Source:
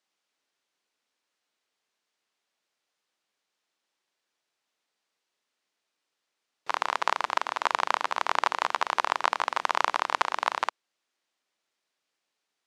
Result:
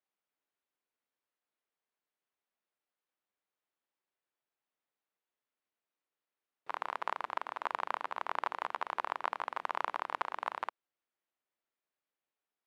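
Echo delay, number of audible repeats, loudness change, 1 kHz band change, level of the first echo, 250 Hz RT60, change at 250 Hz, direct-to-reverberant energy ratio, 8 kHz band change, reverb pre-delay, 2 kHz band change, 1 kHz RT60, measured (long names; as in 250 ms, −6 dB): no echo audible, no echo audible, −10.0 dB, −9.5 dB, no echo audible, no reverb audible, −8.5 dB, no reverb audible, below −20 dB, no reverb audible, −11.0 dB, no reverb audible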